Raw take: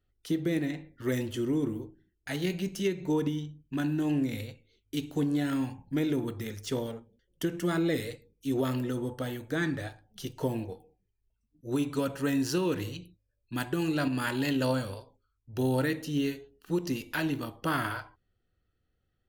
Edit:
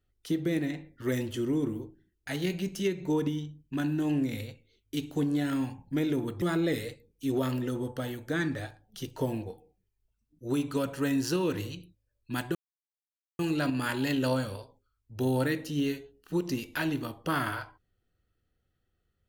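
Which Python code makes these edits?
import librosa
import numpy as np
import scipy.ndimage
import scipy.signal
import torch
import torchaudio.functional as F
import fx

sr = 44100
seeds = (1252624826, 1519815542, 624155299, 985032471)

y = fx.edit(x, sr, fx.cut(start_s=6.42, length_s=1.22),
    fx.insert_silence(at_s=13.77, length_s=0.84), tone=tone)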